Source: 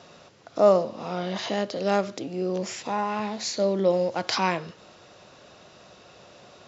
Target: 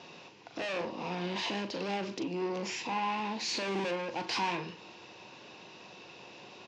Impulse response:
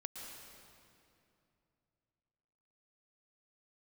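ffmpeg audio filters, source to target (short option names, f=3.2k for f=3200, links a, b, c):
-filter_complex "[0:a]asettb=1/sr,asplit=3[a][b][c];[a]atrim=end=3.484[d];[b]atrim=start=3.48:end=3.91,asetpts=PTS-STARTPTS,afade=t=in:d=0.004:c=qsin,afade=t=out:st=0.426:d=0.004:c=qsin,aeval=exprs='val(0)+0.5*0.0266*sgn(val(0))':c=same[e];[c]atrim=start=3.906[f];[d][e]acrossfade=d=0.004:c1=hsin:c2=qsin[g];[g][f]acrossfade=d=0.004:c1=qsin:c2=hsin,aeval=exprs='(tanh(35.5*val(0)+0.3)-tanh(0.3))/35.5':c=same,highpass=140,equalizer=f=330:t=q:w=4:g=4,equalizer=f=620:t=q:w=4:g=-8,equalizer=f=940:t=q:w=4:g=7,equalizer=f=1.3k:t=q:w=4:g=-8,equalizer=f=2.6k:t=q:w=4:g=8,lowpass=f=6.2k:w=0.5412,lowpass=f=6.2k:w=1.3066,asplit=2[h][i];[i]adelay=40,volume=-9.5dB[j];[h][j]amix=inputs=2:normalize=0"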